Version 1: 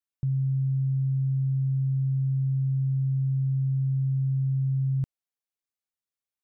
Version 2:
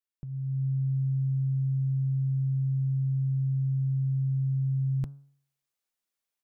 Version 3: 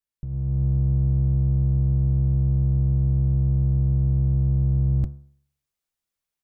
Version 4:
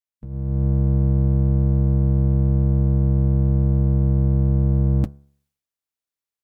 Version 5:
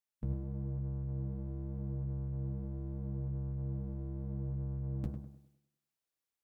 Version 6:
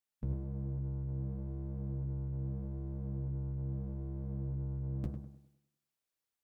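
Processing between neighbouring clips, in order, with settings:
peaking EQ 99 Hz -14.5 dB 0.82 oct; de-hum 139.8 Hz, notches 11; level rider gain up to 10 dB; trim -4.5 dB
octave divider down 1 oct, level -4 dB; bass shelf 110 Hz +11 dB
spectral peaks clipped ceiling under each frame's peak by 13 dB; comb of notches 180 Hz; upward expansion 1.5:1, over -36 dBFS; trim +4 dB
peak limiter -18.5 dBFS, peak gain reduction 7.5 dB; compressor with a negative ratio -30 dBFS, ratio -1; on a send: tape echo 99 ms, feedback 48%, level -5 dB, low-pass 1.2 kHz; on the sum: trim -7.5 dB
loudspeaker Doppler distortion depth 0.4 ms

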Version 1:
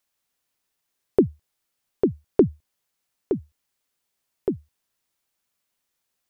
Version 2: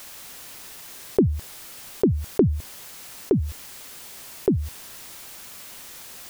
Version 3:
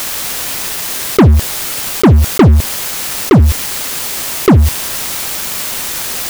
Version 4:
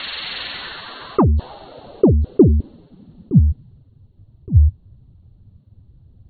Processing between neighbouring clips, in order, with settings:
level flattener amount 70%; trim -3 dB
waveshaping leveller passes 5; trim +5 dB
knee-point frequency compression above 2.6 kHz 4:1; spectral gate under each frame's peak -25 dB strong; low-pass sweep 2.1 kHz -> 100 Hz, 0.42–3.95 s; trim -8.5 dB

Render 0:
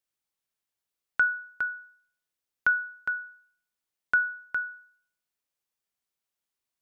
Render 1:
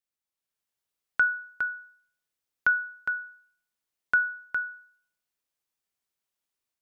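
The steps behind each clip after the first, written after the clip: level rider gain up to 6 dB; trim -5.5 dB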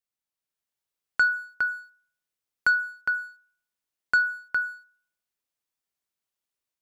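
waveshaping leveller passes 1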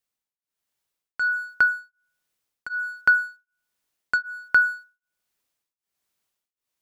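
in parallel at +3 dB: gain riding 2 s; on the sum: tremolo of two beating tones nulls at 1.3 Hz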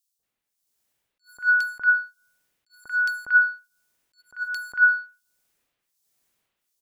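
three bands offset in time highs, lows, mids 190/230 ms, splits 1.1/3.8 kHz; attacks held to a fixed rise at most 300 dB/s; trim +7.5 dB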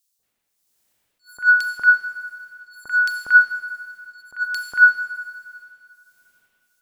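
Schroeder reverb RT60 2.3 s, combs from 27 ms, DRR 6.5 dB; trim +6 dB

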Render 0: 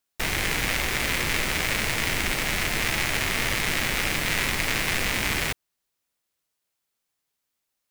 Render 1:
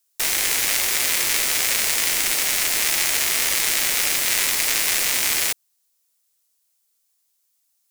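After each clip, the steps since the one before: tone controls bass -14 dB, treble +14 dB; trim -1 dB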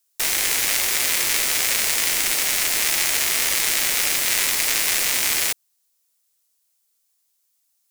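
no audible change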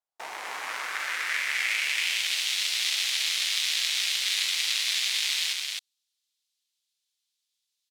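band-pass sweep 730 Hz -> 3.6 kHz, 0.01–2.33 s; on a send: loudspeakers at several distances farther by 39 m -10 dB, 91 m -3 dB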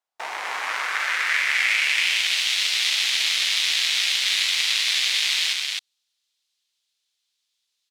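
overdrive pedal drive 8 dB, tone 4 kHz, clips at -8 dBFS; trim +4 dB

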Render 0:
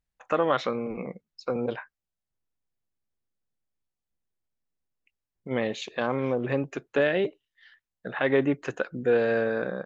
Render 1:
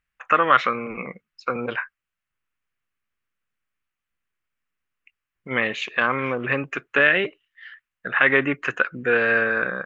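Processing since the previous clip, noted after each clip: high-order bell 1.8 kHz +13.5 dB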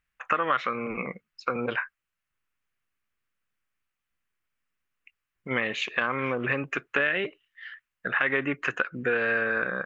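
compression 3:1, threshold -24 dBFS, peak gain reduction 10.5 dB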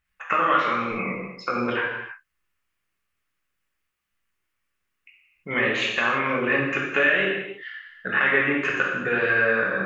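gated-style reverb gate 370 ms falling, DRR -4 dB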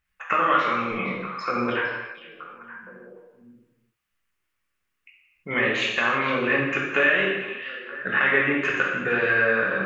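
repeats whose band climbs or falls 463 ms, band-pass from 3.3 kHz, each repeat -1.4 oct, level -10 dB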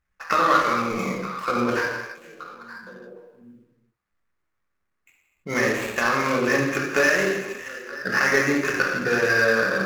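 median filter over 15 samples; trim +3 dB

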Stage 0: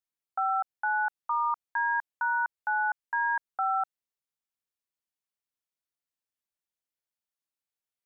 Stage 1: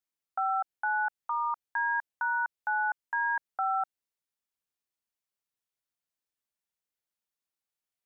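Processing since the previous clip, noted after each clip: dynamic bell 1.1 kHz, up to -4 dB, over -42 dBFS, Q 2.7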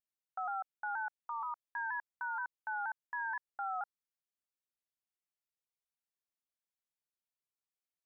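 vibrato with a chosen wave saw down 4.2 Hz, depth 100 cents; trim -9 dB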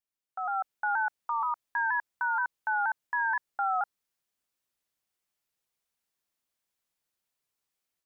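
level rider gain up to 9.5 dB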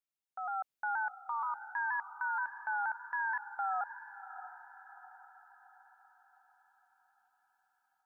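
echo that smears into a reverb 659 ms, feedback 50%, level -13 dB; trim -6 dB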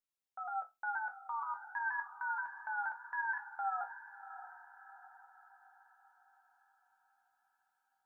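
chord resonator F2 minor, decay 0.2 s; trim +7 dB

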